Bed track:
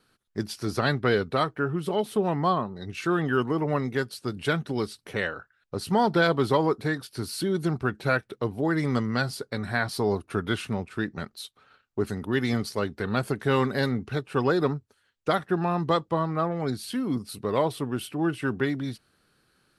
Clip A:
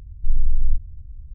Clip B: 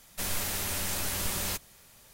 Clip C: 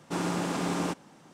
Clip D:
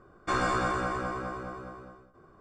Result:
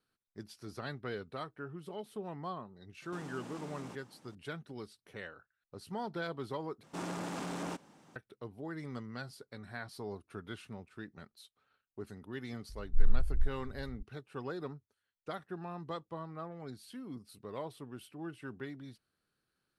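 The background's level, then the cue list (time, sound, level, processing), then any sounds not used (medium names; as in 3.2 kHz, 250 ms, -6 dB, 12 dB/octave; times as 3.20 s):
bed track -17 dB
3.02 s: add C -8 dB + compression 4:1, threshold -38 dBFS
6.83 s: replace with C -6.5 dB + transformer saturation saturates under 740 Hz
12.69 s: add A -6.5 dB + barber-pole phaser -1.7 Hz
not used: B, D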